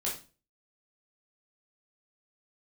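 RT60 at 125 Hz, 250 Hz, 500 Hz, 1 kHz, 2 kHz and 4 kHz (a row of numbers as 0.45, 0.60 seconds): 0.45, 0.45, 0.35, 0.30, 0.30, 0.30 seconds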